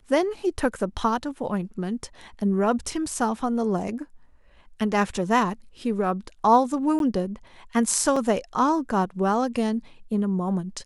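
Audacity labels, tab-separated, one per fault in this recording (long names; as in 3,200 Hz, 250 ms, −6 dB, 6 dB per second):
6.990000	7.000000	drop-out 12 ms
8.160000	8.160000	drop-out 4.3 ms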